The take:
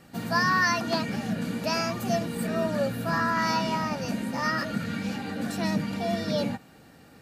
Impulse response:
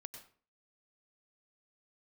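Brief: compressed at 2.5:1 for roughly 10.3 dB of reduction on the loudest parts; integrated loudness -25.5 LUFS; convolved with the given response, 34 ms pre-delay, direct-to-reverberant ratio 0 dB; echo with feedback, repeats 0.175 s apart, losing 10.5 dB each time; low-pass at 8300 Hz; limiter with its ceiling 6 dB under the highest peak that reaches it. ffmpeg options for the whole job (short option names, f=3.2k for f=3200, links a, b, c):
-filter_complex "[0:a]lowpass=8.3k,acompressor=threshold=-36dB:ratio=2.5,alimiter=level_in=4.5dB:limit=-24dB:level=0:latency=1,volume=-4.5dB,aecho=1:1:175|350|525:0.299|0.0896|0.0269,asplit=2[a][b];[1:a]atrim=start_sample=2205,adelay=34[c];[b][c]afir=irnorm=-1:irlink=0,volume=5dB[d];[a][d]amix=inputs=2:normalize=0,volume=8.5dB"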